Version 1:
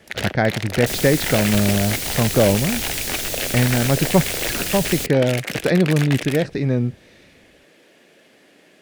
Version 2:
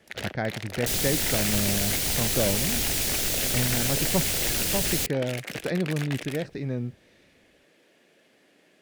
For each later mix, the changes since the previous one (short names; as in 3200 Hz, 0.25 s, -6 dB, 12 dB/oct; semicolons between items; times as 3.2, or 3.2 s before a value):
speech -10.5 dB; first sound -8.5 dB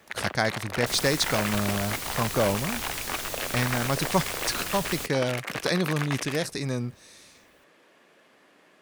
speech: remove LPF 1800 Hz 12 dB/oct; second sound -9.0 dB; master: add bell 1100 Hz +12.5 dB 0.84 oct